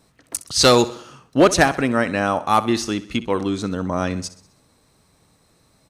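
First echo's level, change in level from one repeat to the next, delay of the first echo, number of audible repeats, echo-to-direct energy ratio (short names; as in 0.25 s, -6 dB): -16.5 dB, -6.0 dB, 64 ms, 4, -15.0 dB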